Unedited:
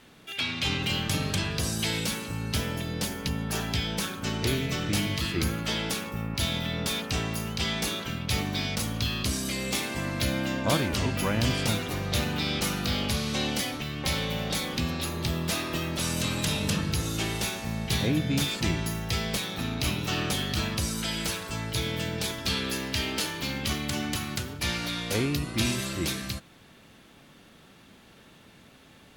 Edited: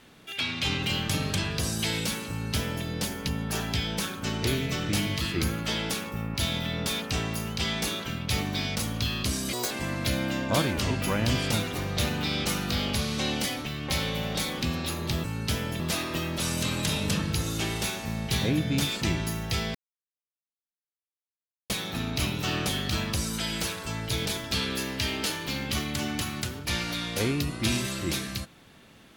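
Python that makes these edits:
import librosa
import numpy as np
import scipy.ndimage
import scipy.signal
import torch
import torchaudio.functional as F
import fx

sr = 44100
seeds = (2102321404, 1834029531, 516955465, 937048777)

y = fx.edit(x, sr, fx.duplicate(start_s=2.29, length_s=0.56, to_s=15.39),
    fx.speed_span(start_s=9.53, length_s=0.33, speed=1.86),
    fx.insert_silence(at_s=19.34, length_s=1.95),
    fx.cut(start_s=21.9, length_s=0.3), tone=tone)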